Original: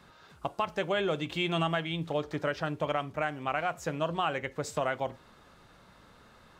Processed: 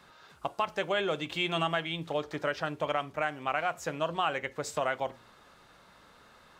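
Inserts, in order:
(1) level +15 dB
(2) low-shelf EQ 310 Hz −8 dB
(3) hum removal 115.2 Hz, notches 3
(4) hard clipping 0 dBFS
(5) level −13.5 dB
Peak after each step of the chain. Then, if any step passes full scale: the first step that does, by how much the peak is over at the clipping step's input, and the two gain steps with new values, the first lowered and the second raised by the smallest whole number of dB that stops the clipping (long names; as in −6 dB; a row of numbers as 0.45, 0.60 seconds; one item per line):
−2.0, −2.0, −2.0, −2.0, −15.5 dBFS
no step passes full scale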